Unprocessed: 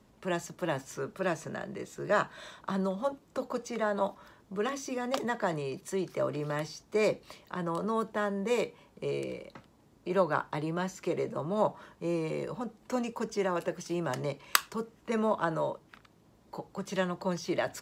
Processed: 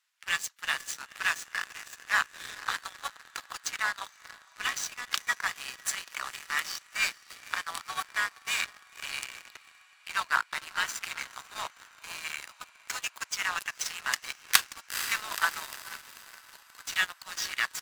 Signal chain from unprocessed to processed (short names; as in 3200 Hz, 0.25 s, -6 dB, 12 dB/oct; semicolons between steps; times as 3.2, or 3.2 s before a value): inverse Chebyshev high-pass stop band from 440 Hz, stop band 60 dB; vocal rider within 3 dB 0.5 s; diffused feedback echo 0.475 s, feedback 73%, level -10 dB; harmoniser -7 st -11 dB, +3 st -14 dB, +4 st -17 dB; sample leveller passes 3